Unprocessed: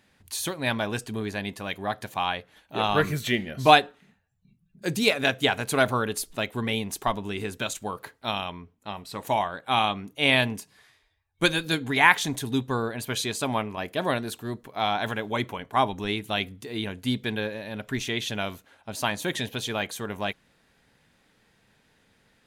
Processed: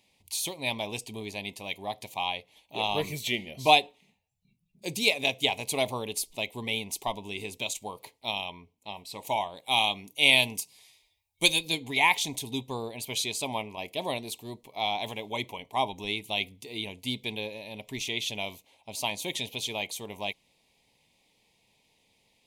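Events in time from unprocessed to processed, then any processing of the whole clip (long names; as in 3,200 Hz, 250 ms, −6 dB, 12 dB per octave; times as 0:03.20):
0:09.56–0:11.59: high-shelf EQ 4,500 Hz +10 dB
whole clip: drawn EQ curve 220 Hz 0 dB, 970 Hz +6 dB, 1,500 Hz −23 dB, 2,200 Hz +9 dB; level −9 dB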